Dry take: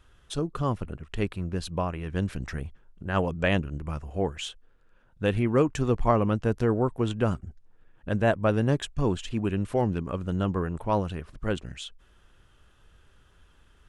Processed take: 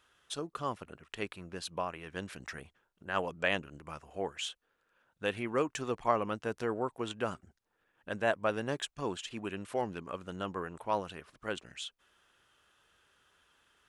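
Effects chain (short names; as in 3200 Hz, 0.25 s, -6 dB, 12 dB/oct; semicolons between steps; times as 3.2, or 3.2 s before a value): HPF 780 Hz 6 dB/oct; gain -2 dB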